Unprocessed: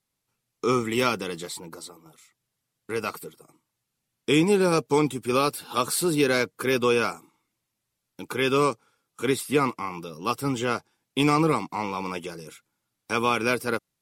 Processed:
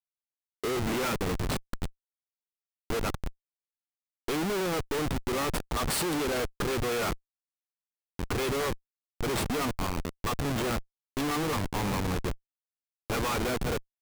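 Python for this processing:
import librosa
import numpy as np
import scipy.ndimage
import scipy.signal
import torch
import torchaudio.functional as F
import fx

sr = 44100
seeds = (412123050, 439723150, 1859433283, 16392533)

y = fx.schmitt(x, sr, flips_db=-30.0)
y = y * 10.0 ** (-2.0 / 20.0)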